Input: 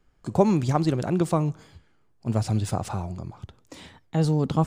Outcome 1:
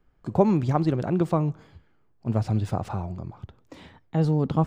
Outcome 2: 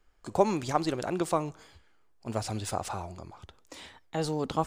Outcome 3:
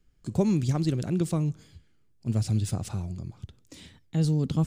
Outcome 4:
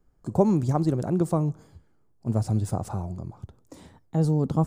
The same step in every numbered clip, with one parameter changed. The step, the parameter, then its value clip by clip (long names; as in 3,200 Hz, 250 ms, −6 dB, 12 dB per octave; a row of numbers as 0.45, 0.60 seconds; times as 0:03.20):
parametric band, centre frequency: 9,300, 140, 890, 2,800 Hertz